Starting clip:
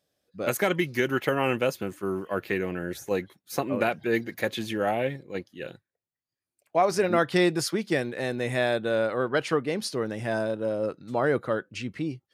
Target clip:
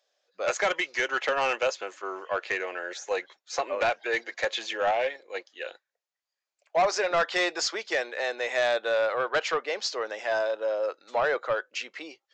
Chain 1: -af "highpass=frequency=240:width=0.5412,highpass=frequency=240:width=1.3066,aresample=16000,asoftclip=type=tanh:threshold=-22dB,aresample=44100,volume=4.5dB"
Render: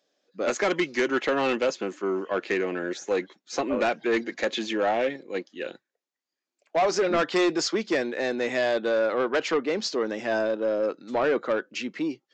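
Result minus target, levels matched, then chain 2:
250 Hz band +13.0 dB
-af "highpass=frequency=540:width=0.5412,highpass=frequency=540:width=1.3066,aresample=16000,asoftclip=type=tanh:threshold=-22dB,aresample=44100,volume=4.5dB"

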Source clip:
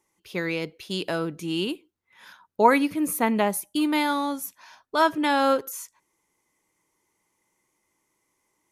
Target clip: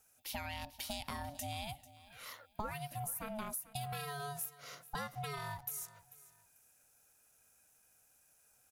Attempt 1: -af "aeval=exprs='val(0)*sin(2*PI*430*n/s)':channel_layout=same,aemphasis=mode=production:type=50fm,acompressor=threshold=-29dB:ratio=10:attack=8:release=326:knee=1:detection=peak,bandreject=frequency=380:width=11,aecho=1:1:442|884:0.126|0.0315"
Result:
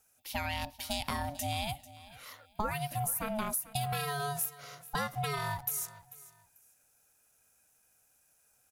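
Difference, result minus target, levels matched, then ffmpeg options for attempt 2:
downward compressor: peak gain reduction −7.5 dB
-af "aeval=exprs='val(0)*sin(2*PI*430*n/s)':channel_layout=same,aemphasis=mode=production:type=50fm,acompressor=threshold=-37.5dB:ratio=10:attack=8:release=326:knee=1:detection=peak,bandreject=frequency=380:width=11,aecho=1:1:442|884:0.126|0.0315"

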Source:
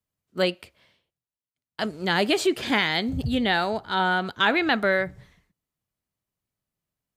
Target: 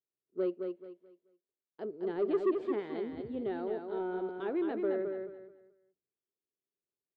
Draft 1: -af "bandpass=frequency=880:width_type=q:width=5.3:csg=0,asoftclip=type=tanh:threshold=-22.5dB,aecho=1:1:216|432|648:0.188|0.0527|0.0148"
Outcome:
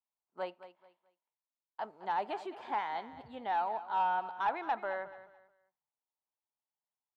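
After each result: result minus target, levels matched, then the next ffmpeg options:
1,000 Hz band +14.0 dB; echo-to-direct −9 dB
-af "bandpass=frequency=390:width_type=q:width=5.3:csg=0,asoftclip=type=tanh:threshold=-22.5dB,aecho=1:1:216|432|648:0.188|0.0527|0.0148"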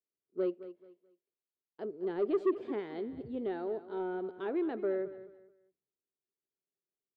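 echo-to-direct −9 dB
-af "bandpass=frequency=390:width_type=q:width=5.3:csg=0,asoftclip=type=tanh:threshold=-22.5dB,aecho=1:1:216|432|648|864:0.531|0.149|0.0416|0.0117"

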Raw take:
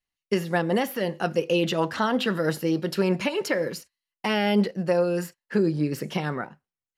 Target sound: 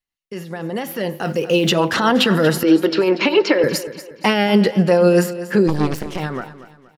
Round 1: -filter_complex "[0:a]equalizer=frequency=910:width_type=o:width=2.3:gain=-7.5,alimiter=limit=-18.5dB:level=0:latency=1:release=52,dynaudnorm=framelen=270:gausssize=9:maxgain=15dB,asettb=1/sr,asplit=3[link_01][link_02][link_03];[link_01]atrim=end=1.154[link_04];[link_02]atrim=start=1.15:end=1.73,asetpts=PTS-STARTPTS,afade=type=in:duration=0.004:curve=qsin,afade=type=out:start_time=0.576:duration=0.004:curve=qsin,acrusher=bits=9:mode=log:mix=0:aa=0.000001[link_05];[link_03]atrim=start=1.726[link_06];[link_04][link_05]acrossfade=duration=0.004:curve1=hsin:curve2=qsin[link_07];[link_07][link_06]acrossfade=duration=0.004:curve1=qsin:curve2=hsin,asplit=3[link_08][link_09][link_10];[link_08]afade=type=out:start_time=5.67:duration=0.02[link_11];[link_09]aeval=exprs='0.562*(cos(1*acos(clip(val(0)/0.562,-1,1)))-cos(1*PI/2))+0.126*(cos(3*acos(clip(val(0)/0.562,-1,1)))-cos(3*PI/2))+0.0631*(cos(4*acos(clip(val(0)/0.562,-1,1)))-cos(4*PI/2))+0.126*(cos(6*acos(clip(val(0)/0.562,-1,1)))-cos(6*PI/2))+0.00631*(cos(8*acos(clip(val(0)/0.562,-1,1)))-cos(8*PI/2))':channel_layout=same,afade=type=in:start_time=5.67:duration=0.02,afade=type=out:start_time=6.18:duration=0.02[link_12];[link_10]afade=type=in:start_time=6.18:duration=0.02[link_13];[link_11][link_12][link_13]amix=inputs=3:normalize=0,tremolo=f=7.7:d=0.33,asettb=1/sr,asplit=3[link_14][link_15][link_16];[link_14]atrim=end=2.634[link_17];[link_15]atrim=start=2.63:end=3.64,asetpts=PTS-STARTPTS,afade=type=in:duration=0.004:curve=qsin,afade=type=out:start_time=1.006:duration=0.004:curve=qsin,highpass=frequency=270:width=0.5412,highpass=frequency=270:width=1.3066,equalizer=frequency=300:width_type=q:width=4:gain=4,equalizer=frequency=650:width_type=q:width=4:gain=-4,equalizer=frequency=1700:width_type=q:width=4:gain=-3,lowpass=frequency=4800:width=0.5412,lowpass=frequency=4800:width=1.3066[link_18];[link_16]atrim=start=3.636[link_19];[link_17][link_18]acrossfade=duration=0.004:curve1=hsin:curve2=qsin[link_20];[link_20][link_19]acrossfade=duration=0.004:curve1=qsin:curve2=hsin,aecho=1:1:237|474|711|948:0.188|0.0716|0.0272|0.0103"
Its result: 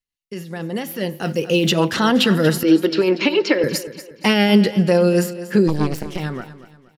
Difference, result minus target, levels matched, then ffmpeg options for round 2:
1,000 Hz band −2.5 dB
-filter_complex "[0:a]alimiter=limit=-18.5dB:level=0:latency=1:release=52,dynaudnorm=framelen=270:gausssize=9:maxgain=15dB,asettb=1/sr,asplit=3[link_01][link_02][link_03];[link_01]atrim=end=1.154[link_04];[link_02]atrim=start=1.15:end=1.73,asetpts=PTS-STARTPTS,afade=type=in:duration=0.004:curve=qsin,afade=type=out:start_time=0.576:duration=0.004:curve=qsin,acrusher=bits=9:mode=log:mix=0:aa=0.000001[link_05];[link_03]atrim=start=1.726[link_06];[link_04][link_05]acrossfade=duration=0.004:curve1=hsin:curve2=qsin[link_07];[link_07][link_06]acrossfade=duration=0.004:curve1=qsin:curve2=hsin,asplit=3[link_08][link_09][link_10];[link_08]afade=type=out:start_time=5.67:duration=0.02[link_11];[link_09]aeval=exprs='0.562*(cos(1*acos(clip(val(0)/0.562,-1,1)))-cos(1*PI/2))+0.126*(cos(3*acos(clip(val(0)/0.562,-1,1)))-cos(3*PI/2))+0.0631*(cos(4*acos(clip(val(0)/0.562,-1,1)))-cos(4*PI/2))+0.126*(cos(6*acos(clip(val(0)/0.562,-1,1)))-cos(6*PI/2))+0.00631*(cos(8*acos(clip(val(0)/0.562,-1,1)))-cos(8*PI/2))':channel_layout=same,afade=type=in:start_time=5.67:duration=0.02,afade=type=out:start_time=6.18:duration=0.02[link_12];[link_10]afade=type=in:start_time=6.18:duration=0.02[link_13];[link_11][link_12][link_13]amix=inputs=3:normalize=0,tremolo=f=7.7:d=0.33,asettb=1/sr,asplit=3[link_14][link_15][link_16];[link_14]atrim=end=2.634[link_17];[link_15]atrim=start=2.63:end=3.64,asetpts=PTS-STARTPTS,afade=type=in:duration=0.004:curve=qsin,afade=type=out:start_time=1.006:duration=0.004:curve=qsin,highpass=frequency=270:width=0.5412,highpass=frequency=270:width=1.3066,equalizer=frequency=300:width_type=q:width=4:gain=4,equalizer=frequency=650:width_type=q:width=4:gain=-4,equalizer=frequency=1700:width_type=q:width=4:gain=-3,lowpass=frequency=4800:width=0.5412,lowpass=frequency=4800:width=1.3066[link_18];[link_16]atrim=start=3.636[link_19];[link_17][link_18]acrossfade=duration=0.004:curve1=hsin:curve2=qsin[link_20];[link_20][link_19]acrossfade=duration=0.004:curve1=qsin:curve2=hsin,aecho=1:1:237|474|711|948:0.188|0.0716|0.0272|0.0103"

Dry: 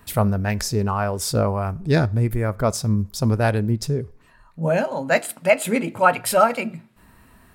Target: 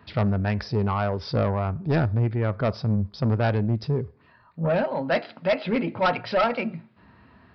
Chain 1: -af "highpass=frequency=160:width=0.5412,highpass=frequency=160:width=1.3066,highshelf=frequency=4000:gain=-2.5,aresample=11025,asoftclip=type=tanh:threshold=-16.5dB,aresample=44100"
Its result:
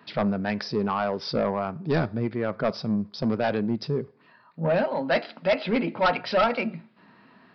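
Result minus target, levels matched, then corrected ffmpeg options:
125 Hz band −7.5 dB; 8,000 Hz band +4.5 dB
-af "highpass=frequency=68:width=0.5412,highpass=frequency=68:width=1.3066,highshelf=frequency=4000:gain=-9,aresample=11025,asoftclip=type=tanh:threshold=-16.5dB,aresample=44100"

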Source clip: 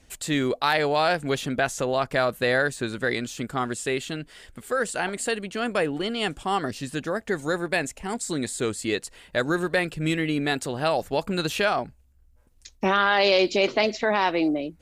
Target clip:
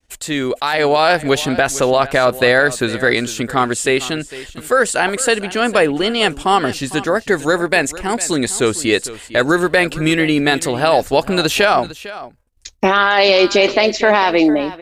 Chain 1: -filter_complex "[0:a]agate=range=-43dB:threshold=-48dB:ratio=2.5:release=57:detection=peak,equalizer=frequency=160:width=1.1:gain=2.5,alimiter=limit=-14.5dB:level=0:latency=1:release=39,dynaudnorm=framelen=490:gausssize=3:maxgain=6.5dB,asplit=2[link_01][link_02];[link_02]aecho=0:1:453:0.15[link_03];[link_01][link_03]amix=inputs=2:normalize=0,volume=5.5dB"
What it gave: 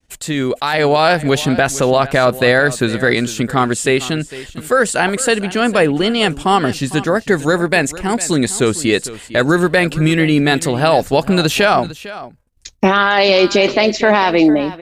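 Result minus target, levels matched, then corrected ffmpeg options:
125 Hz band +5.5 dB
-filter_complex "[0:a]agate=range=-43dB:threshold=-48dB:ratio=2.5:release=57:detection=peak,equalizer=frequency=160:width=1.1:gain=-5,alimiter=limit=-14.5dB:level=0:latency=1:release=39,dynaudnorm=framelen=490:gausssize=3:maxgain=6.5dB,asplit=2[link_01][link_02];[link_02]aecho=0:1:453:0.15[link_03];[link_01][link_03]amix=inputs=2:normalize=0,volume=5.5dB"

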